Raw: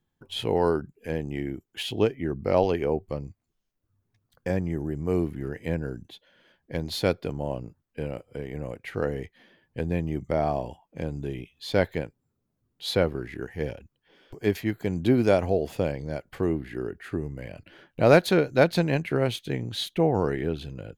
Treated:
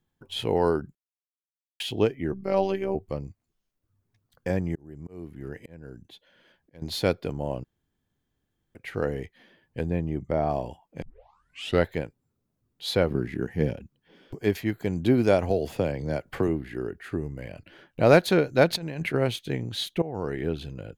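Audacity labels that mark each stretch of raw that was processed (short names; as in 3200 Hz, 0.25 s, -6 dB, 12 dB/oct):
0.950000	1.800000	mute
2.320000	2.950000	robotiser 193 Hz
4.750000	6.820000	auto swell 0.674 s
7.640000	8.750000	room tone
9.900000	10.500000	high shelf 2500 Hz -9 dB
11.020000	11.020000	tape start 0.84 s
13.100000	14.360000	bell 190 Hz +10 dB 1.7 oct
15.500000	16.480000	three-band squash depth 70%
18.700000	19.140000	negative-ratio compressor -32 dBFS
20.020000	20.490000	fade in, from -18.5 dB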